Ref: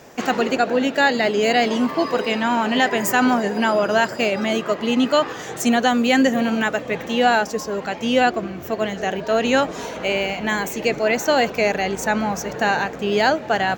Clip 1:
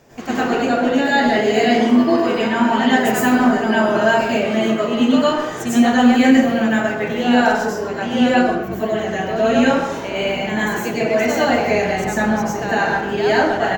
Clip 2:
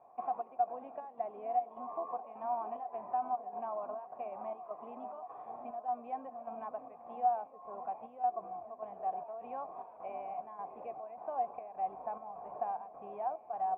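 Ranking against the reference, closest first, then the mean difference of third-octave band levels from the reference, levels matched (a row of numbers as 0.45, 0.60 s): 1, 2; 6.0, 16.0 dB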